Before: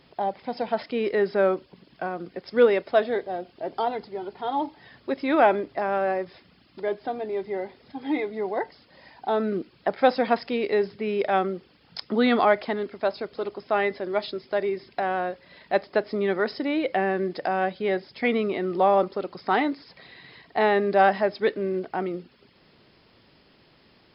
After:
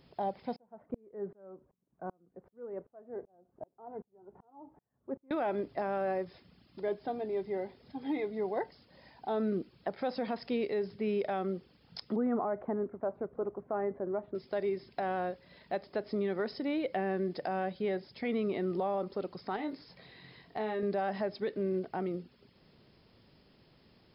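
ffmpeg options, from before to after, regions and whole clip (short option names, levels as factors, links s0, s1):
-filter_complex "[0:a]asettb=1/sr,asplit=3[s0][s1][s2];[s0]atrim=end=0.564[s3];[s1]atrim=start=0.56:end=5.31,asetpts=PTS-STARTPTS,afade=t=in:d=0.004:c=qsin,afade=t=out:st=4.746:d=0.004:c=qsin,lowpass=f=1300:w=0.5412,lowpass=f=1300:w=1.3066,aeval=exprs='val(0)*pow(10,-38*if(lt(mod(-2.6*n/s,1),2*abs(-2.6)/1000),1-mod(-2.6*n/s,1)/(2*abs(-2.6)/1000),(mod(-2.6*n/s,1)-2*abs(-2.6)/1000)/(1-2*abs(-2.6)/1000))/20)':c=same[s4];[s2]atrim=start=5.306[s5];[s3][s4]acrossfade=d=0.004:c1=hsin:c2=qsin[s6];[s6][s5]acrossfade=d=0.004:c1=qsin:c2=hsin,asettb=1/sr,asplit=3[s7][s8][s9];[s7]atrim=end=12.164[s10];[s8]atrim=start=12.16:end=14.35,asetpts=PTS-STARTPTS,afade=t=in:d=0.004:c=qsin,afade=t=out:st=2.186:d=0.004:c=qsin,lowpass=f=1400:w=0.5412,lowpass=f=1400:w=1.3066,aemphasis=mode=reproduction:type=50fm[s11];[s9]atrim=start=14.346[s12];[s10][s11]acrossfade=d=0.004:c1=hsin:c2=qsin[s13];[s13][s12]acrossfade=d=0.004:c1=qsin:c2=hsin,asettb=1/sr,asplit=3[s14][s15][s16];[s14]atrim=end=19.564[s17];[s15]atrim=start=19.56:end=20.83,asetpts=PTS-STARTPTS,afade=t=in:d=0.004:c=qsin,afade=t=out:st=1.266:d=0.004:c=qsin,asplit=2[s18][s19];[s19]adelay=23,volume=0.447[s20];[s18][s20]amix=inputs=2:normalize=0,atrim=end_sample=56007,acompressor=threshold=0.0447:ratio=3:attack=3.2:release=140:knee=1:detection=peak[s21];[s16]atrim=start=20.826[s22];[s17][s21]acrossfade=d=0.004:c1=hsin:c2=qsin[s23];[s23][s22]acrossfade=d=0.004:c1=qsin:c2=hsin,equalizer=f=1900:w=0.3:g=-8.5,alimiter=limit=0.075:level=0:latency=1:release=103,equalizer=f=310:w=2.5:g=-3,volume=0.891"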